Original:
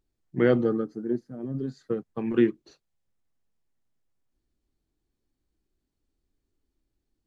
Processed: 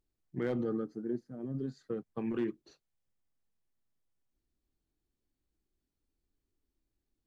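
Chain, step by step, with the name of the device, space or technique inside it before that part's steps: clipper into limiter (hard clipper -12.5 dBFS, distortion -23 dB; peak limiter -20 dBFS, peak gain reduction 7.5 dB); trim -5.5 dB

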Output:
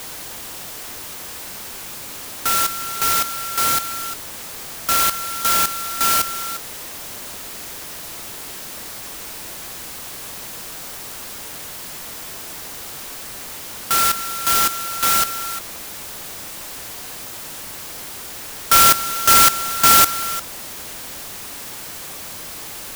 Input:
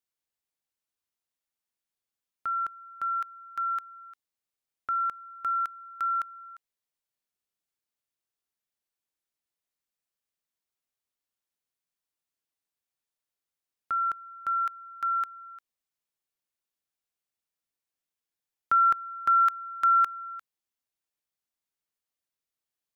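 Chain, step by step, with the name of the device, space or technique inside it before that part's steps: early CD player with a faulty converter (jump at every zero crossing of -32.5 dBFS; sampling jitter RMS 0.12 ms); trim +9 dB

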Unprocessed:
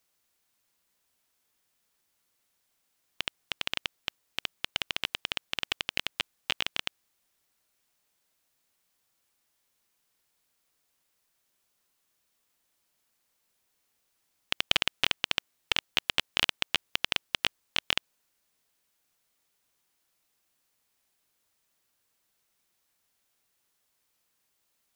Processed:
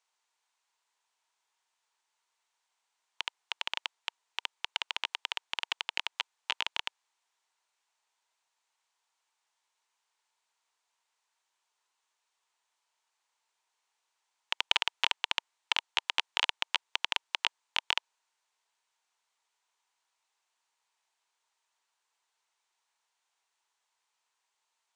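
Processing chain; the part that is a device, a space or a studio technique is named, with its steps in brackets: phone speaker on a table (cabinet simulation 470–7900 Hz, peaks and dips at 550 Hz -9 dB, 930 Hz +9 dB, 5.1 kHz -3 dB); trim -2 dB

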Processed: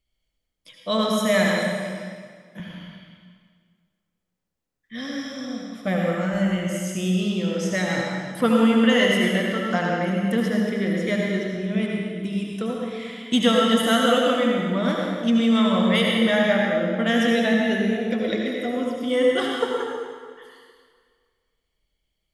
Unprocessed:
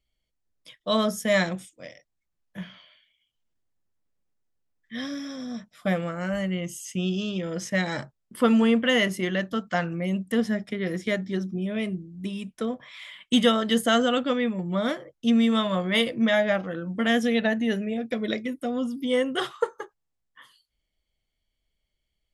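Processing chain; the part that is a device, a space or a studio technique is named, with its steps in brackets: 1.46–2.60 s: high-pass 130 Hz 24 dB/octave; stairwell (reverberation RT60 1.8 s, pre-delay 68 ms, DRR -1.5 dB)

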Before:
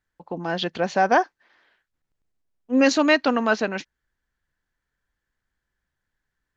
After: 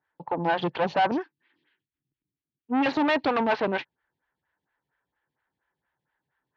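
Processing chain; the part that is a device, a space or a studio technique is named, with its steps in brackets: 1.11–2.86 s: FFT filter 310 Hz 0 dB, 660 Hz -28 dB, 2.7 kHz -5 dB; vibe pedal into a guitar amplifier (lamp-driven phase shifter 4.3 Hz; valve stage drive 29 dB, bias 0.6; cabinet simulation 110–3700 Hz, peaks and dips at 140 Hz +7 dB, 210 Hz -5 dB, 890 Hz +8 dB); trim +8 dB

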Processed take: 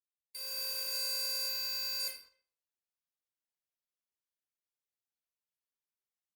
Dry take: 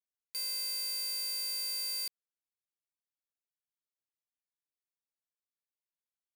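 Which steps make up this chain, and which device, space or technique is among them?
1.49–2.00 s: fifteen-band graphic EQ 100 Hz +6 dB, 400 Hz -12 dB, 10 kHz -9 dB; speakerphone in a meeting room (reverberation RT60 0.55 s, pre-delay 18 ms, DRR 0.5 dB; speakerphone echo 250 ms, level -20 dB; level rider gain up to 10 dB; gate -47 dBFS, range -8 dB; trim -8.5 dB; Opus 20 kbps 48 kHz)

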